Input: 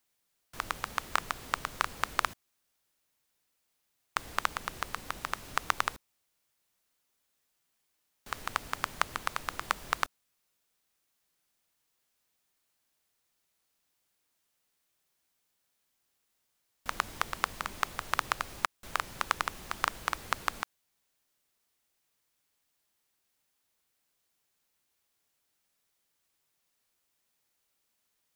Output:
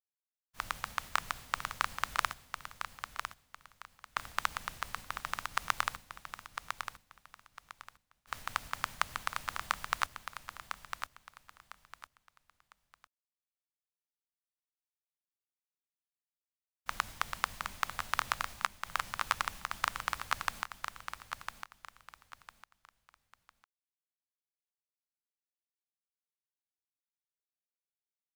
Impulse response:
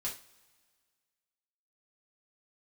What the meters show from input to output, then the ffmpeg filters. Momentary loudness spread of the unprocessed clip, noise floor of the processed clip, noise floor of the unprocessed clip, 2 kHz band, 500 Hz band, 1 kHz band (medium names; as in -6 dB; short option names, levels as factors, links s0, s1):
6 LU, under -85 dBFS, -79 dBFS, -1.5 dB, -6.0 dB, -2.0 dB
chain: -filter_complex "[0:a]agate=range=0.0224:threshold=0.00891:ratio=3:detection=peak,equalizer=f=370:t=o:w=1.1:g=-11.5,asplit=2[s0][s1];[s1]aecho=0:1:1003|2006|3009:0.422|0.118|0.0331[s2];[s0][s2]amix=inputs=2:normalize=0,volume=0.841"